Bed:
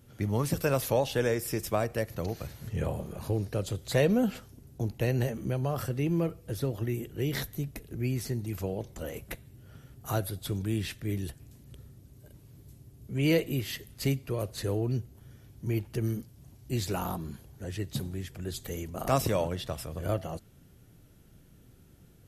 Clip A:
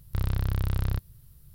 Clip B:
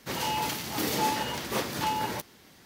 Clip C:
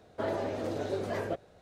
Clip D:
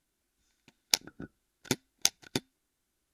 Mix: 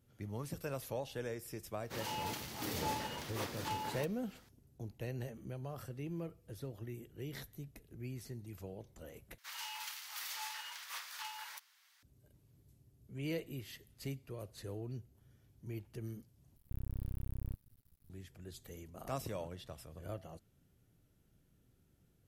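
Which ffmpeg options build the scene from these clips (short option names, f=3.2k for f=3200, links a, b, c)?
-filter_complex "[2:a]asplit=2[a][b];[0:a]volume=-14dB[c];[b]highpass=f=1.1k:w=0.5412,highpass=f=1.1k:w=1.3066[d];[1:a]aeval=exprs='max(val(0),0)':c=same[e];[c]asplit=3[f][g][h];[f]atrim=end=9.384[i];[d]atrim=end=2.65,asetpts=PTS-STARTPTS,volume=-11dB[j];[g]atrim=start=12.026:end=16.564[k];[e]atrim=end=1.54,asetpts=PTS-STARTPTS,volume=-11dB[l];[h]atrim=start=18.096[m];[a]atrim=end=2.65,asetpts=PTS-STARTPTS,volume=-11dB,afade=t=in:d=0.004:c=hsin,afade=t=out:st=2.646:d=0.004:c=hsin,adelay=1840[n];[i][j]acrossfade=d=0.004:c1=hsin:c2=hsin[o];[o][k]acrossfade=d=0.004:c1=hsin:c2=hsin[p];[p][l]acrossfade=d=0.004:c1=hsin:c2=hsin[q];[q][m]acrossfade=d=0.004:c1=hsin:c2=hsin[r];[r][n]amix=inputs=2:normalize=0"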